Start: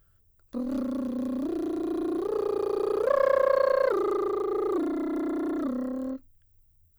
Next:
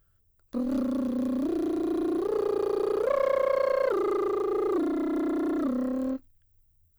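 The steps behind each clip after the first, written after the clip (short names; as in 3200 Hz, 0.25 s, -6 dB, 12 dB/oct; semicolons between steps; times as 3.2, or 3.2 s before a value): sample leveller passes 1; in parallel at -1.5 dB: vocal rider; on the sum: gain -8 dB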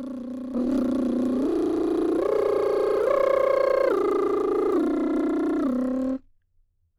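spectral noise reduction 8 dB; low-pass opened by the level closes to 1100 Hz, open at -23.5 dBFS; reverse echo 0.884 s -8.5 dB; gain +3.5 dB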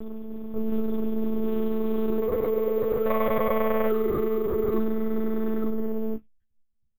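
monotone LPC vocoder at 8 kHz 220 Hz; doubler 14 ms -8 dB; careless resampling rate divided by 3×, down filtered, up hold; gain -3 dB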